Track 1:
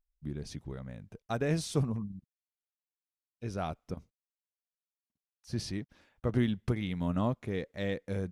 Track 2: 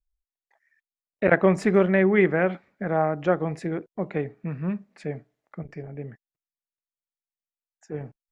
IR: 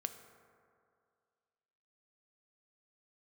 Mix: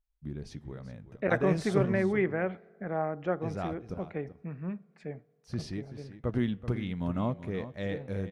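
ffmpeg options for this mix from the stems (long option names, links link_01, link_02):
-filter_complex "[0:a]flanger=delay=3.4:depth=8.5:regen=-90:speed=0.32:shape=triangular,volume=3dB,asplit=3[link_01][link_02][link_03];[link_02]volume=-16dB[link_04];[link_03]volume=-12dB[link_05];[1:a]volume=-9.5dB,asplit=2[link_06][link_07];[link_07]volume=-14.5dB[link_08];[2:a]atrim=start_sample=2205[link_09];[link_04][link_08]amix=inputs=2:normalize=0[link_10];[link_10][link_09]afir=irnorm=-1:irlink=0[link_11];[link_05]aecho=0:1:382:1[link_12];[link_01][link_06][link_11][link_12]amix=inputs=4:normalize=0,highshelf=frequency=5200:gain=-9.5"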